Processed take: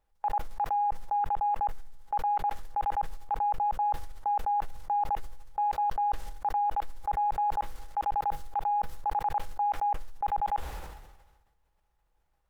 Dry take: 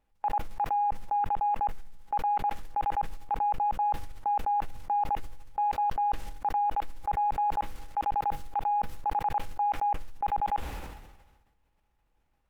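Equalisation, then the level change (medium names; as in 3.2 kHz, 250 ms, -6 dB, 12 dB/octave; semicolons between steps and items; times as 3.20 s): fifteen-band graphic EQ 100 Hz -5 dB, 250 Hz -11 dB, 2.5 kHz -5 dB; 0.0 dB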